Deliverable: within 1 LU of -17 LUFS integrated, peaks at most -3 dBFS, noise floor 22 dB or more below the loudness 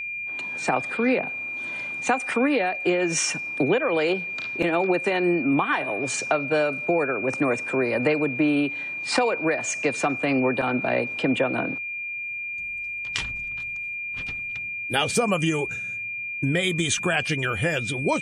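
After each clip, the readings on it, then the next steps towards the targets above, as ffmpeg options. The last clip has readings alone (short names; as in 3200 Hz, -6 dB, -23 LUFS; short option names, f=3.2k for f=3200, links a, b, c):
steady tone 2400 Hz; tone level -29 dBFS; loudness -24.5 LUFS; peak -8.5 dBFS; loudness target -17.0 LUFS
-> -af "bandreject=f=2.4k:w=30"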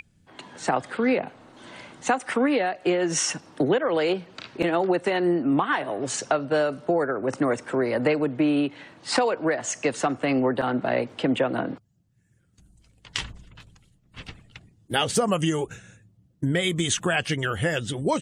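steady tone none; loudness -25.0 LUFS; peak -9.5 dBFS; loudness target -17.0 LUFS
-> -af "volume=8dB,alimiter=limit=-3dB:level=0:latency=1"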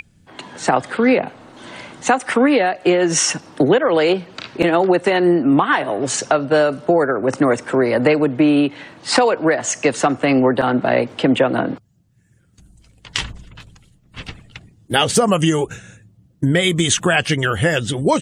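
loudness -17.0 LUFS; peak -3.0 dBFS; noise floor -55 dBFS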